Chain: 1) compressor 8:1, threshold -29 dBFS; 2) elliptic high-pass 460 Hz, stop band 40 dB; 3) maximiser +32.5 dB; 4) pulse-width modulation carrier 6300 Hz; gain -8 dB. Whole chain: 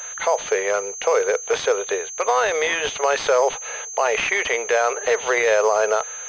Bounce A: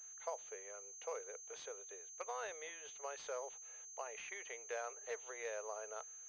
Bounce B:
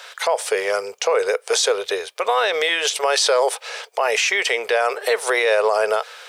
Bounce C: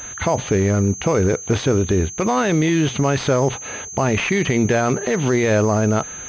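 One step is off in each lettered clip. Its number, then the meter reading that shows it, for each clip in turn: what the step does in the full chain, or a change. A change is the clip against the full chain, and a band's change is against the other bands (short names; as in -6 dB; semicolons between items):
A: 3, crest factor change +5.0 dB; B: 4, 4 kHz band +7.5 dB; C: 2, 250 Hz band +23.0 dB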